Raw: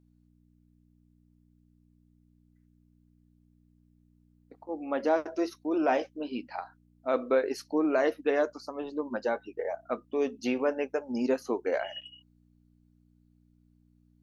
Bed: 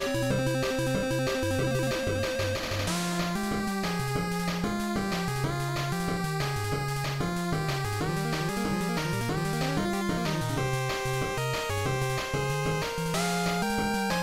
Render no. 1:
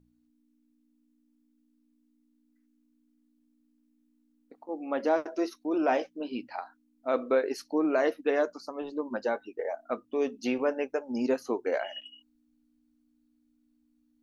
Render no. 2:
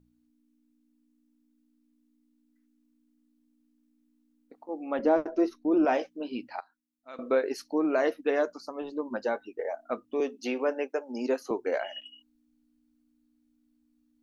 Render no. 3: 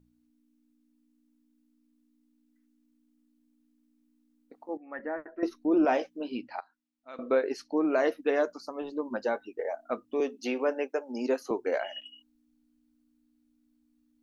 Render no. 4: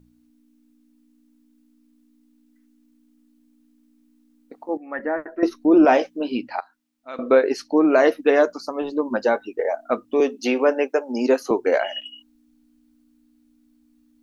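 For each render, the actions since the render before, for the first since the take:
hum removal 60 Hz, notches 3
0:04.99–0:05.85: spectral tilt −3 dB per octave; 0:06.60–0:07.19: guitar amp tone stack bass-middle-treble 5-5-5; 0:10.20–0:11.51: high-pass filter 260 Hz 24 dB per octave
0:04.77–0:05.43: transistor ladder low-pass 1,900 Hz, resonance 85%; 0:06.37–0:07.92: high-frequency loss of the air 56 metres
level +10 dB

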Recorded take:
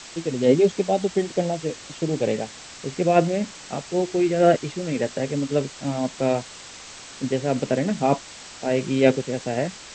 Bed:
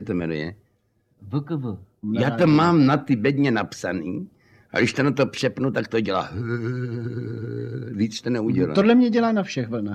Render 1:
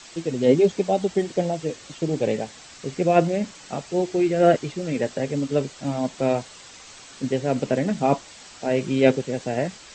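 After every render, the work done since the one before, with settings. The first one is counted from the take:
broadband denoise 6 dB, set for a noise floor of −42 dBFS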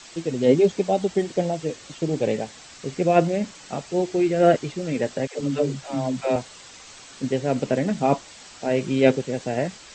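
0:05.27–0:06.36: all-pass dispersion lows, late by 136 ms, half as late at 350 Hz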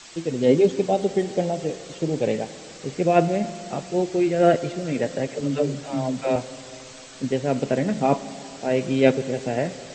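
four-comb reverb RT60 3.2 s, combs from 33 ms, DRR 13.5 dB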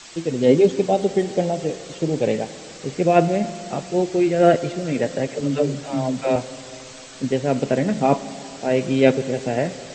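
level +2.5 dB
brickwall limiter −2 dBFS, peak gain reduction 1 dB

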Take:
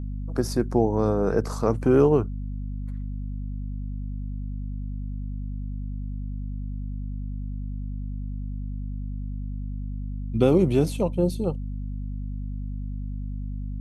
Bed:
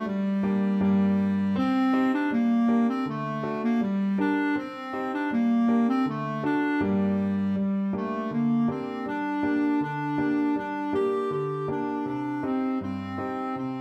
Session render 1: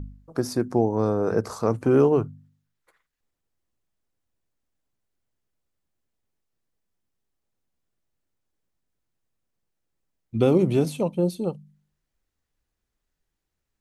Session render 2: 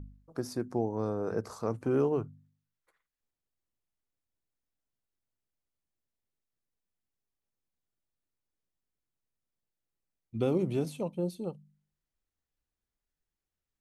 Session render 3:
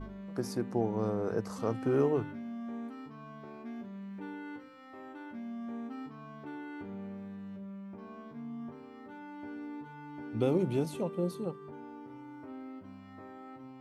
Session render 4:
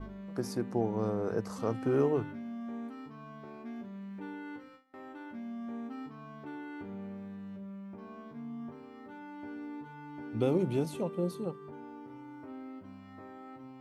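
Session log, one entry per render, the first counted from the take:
hum removal 50 Hz, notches 5
level −9.5 dB
mix in bed −18 dB
noise gate with hold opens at −44 dBFS

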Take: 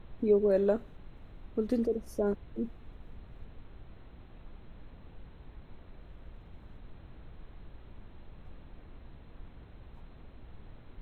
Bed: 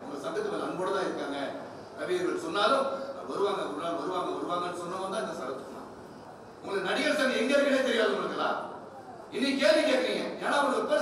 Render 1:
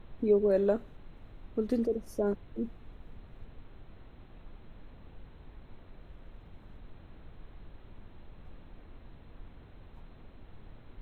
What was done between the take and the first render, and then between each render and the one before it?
hum removal 60 Hz, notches 3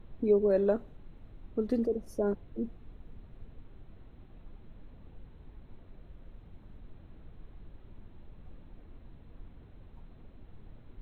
broadband denoise 6 dB, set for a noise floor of −54 dBFS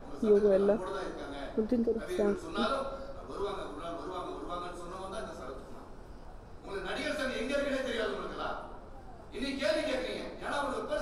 mix in bed −7.5 dB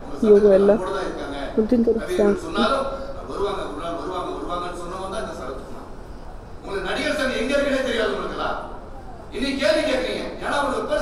level +11.5 dB

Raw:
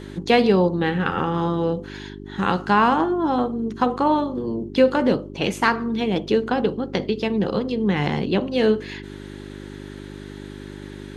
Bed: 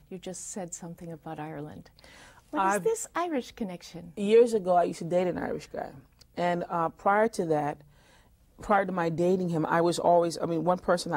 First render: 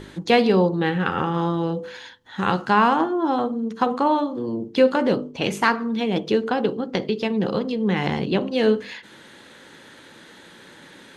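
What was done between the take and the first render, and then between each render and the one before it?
hum removal 50 Hz, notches 10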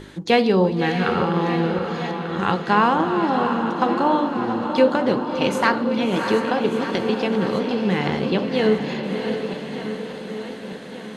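feedback delay that plays each chunk backwards 596 ms, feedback 73%, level −11.5 dB
on a send: feedback delay with all-pass diffusion 672 ms, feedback 47%, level −7 dB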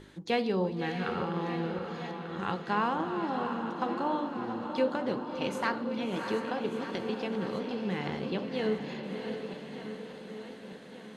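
level −12 dB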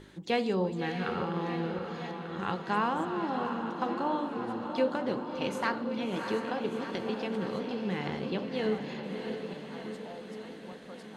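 mix in bed −25 dB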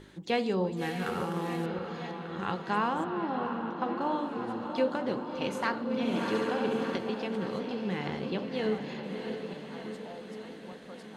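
0:00.77–0:01.66: variable-slope delta modulation 64 kbit/s
0:03.04–0:04.01: Bessel low-pass filter 3,200 Hz
0:05.83–0:06.97: flutter between parallel walls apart 11.9 metres, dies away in 1.2 s

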